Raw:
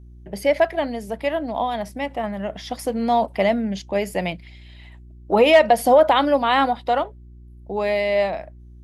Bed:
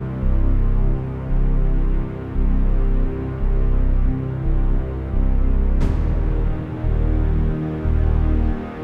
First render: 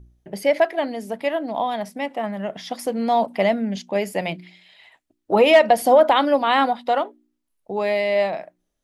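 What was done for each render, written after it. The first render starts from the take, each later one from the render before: de-hum 60 Hz, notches 6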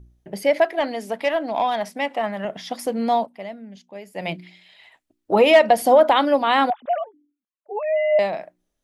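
0.8–2.45 overdrive pedal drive 10 dB, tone 5900 Hz, clips at -10.5 dBFS; 3.14–4.29 dip -15 dB, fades 0.16 s; 6.7–8.19 sine-wave speech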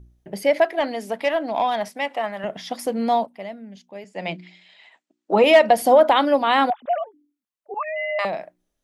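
1.88–2.44 HPF 400 Hz 6 dB/oct; 4.04–5.44 elliptic band-pass 180–7600 Hz; 7.74–8.25 resonant high-pass 1200 Hz, resonance Q 9.3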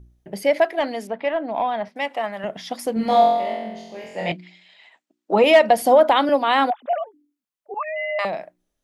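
1.07–1.96 air absorption 320 m; 2.94–4.32 flutter echo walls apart 3.9 m, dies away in 1.1 s; 6.29–6.93 steep high-pass 230 Hz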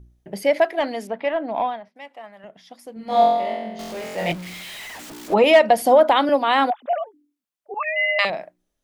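1.65–3.22 dip -14 dB, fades 0.16 s; 3.79–5.34 zero-crossing step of -31.5 dBFS; 7.8–8.3 weighting filter D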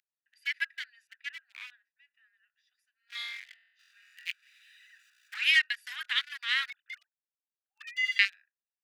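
Wiener smoothing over 41 samples; steep high-pass 1600 Hz 48 dB/oct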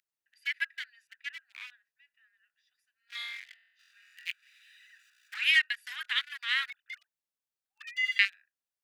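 dynamic EQ 5300 Hz, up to -5 dB, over -48 dBFS, Q 1.9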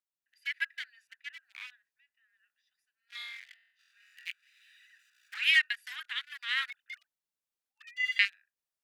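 random-step tremolo; wow and flutter 18 cents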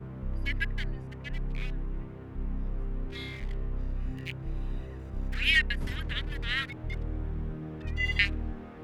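add bed -15.5 dB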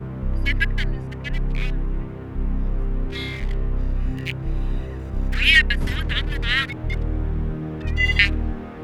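gain +10 dB; limiter -3 dBFS, peak gain reduction 1.5 dB

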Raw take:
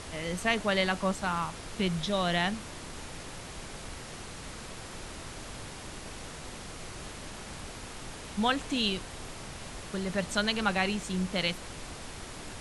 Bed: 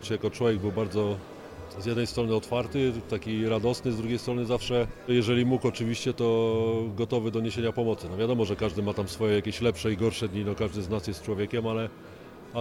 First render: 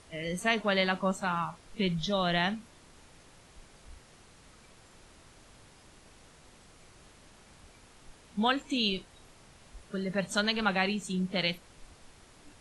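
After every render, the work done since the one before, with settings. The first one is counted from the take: noise print and reduce 14 dB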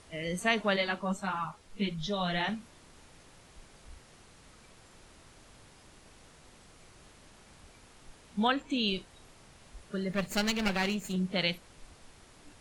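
0.76–2.49 ensemble effect; 8.47–8.88 high shelf 5300 Hz -9.5 dB; 10.12–11.16 minimum comb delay 0.42 ms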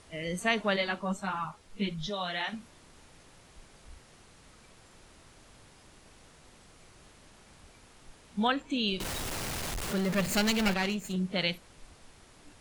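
2.09–2.52 HPF 350 Hz -> 950 Hz 6 dB/oct; 9–10.74 zero-crossing step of -30 dBFS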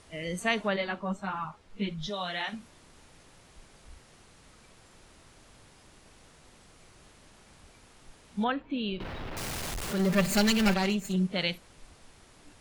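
0.67–2.01 LPF 2200 Hz -> 3900 Hz 6 dB/oct; 8.44–9.37 air absorption 350 m; 9.99–11.27 comb 5.1 ms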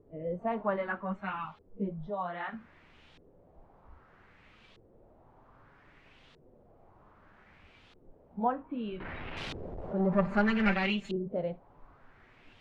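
flange 0.17 Hz, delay 6.9 ms, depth 6.2 ms, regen -47%; LFO low-pass saw up 0.63 Hz 400–3600 Hz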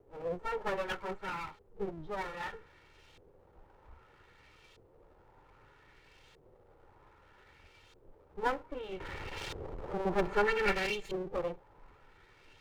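minimum comb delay 2.2 ms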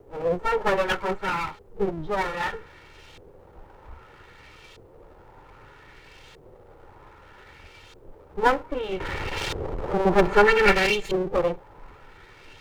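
gain +12 dB

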